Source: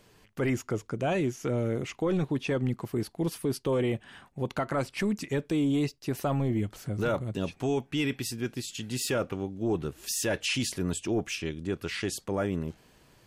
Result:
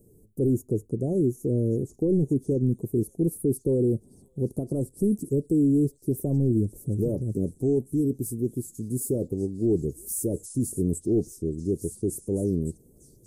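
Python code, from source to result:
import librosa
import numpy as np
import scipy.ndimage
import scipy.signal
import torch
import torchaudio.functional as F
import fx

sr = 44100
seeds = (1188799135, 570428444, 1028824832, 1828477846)

y = scipy.signal.sosfilt(scipy.signal.ellip(3, 1.0, 80, [420.0, 9200.0], 'bandstop', fs=sr, output='sos'), x)
y = fx.echo_stepped(y, sr, ms=573, hz=2900.0, octaves=0.7, feedback_pct=70, wet_db=-4.0)
y = y * librosa.db_to_amplitude(6.0)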